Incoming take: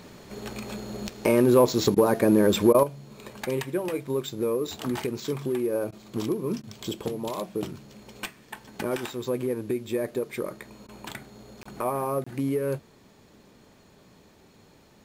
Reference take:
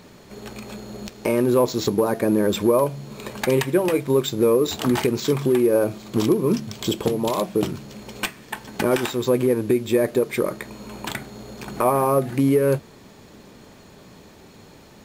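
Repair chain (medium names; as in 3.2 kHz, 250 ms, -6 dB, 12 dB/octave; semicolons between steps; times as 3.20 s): interpolate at 11.63/12.24 s, 25 ms; interpolate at 1.95/2.73/5.91/6.62/10.87 s, 13 ms; trim 0 dB, from 2.83 s +9 dB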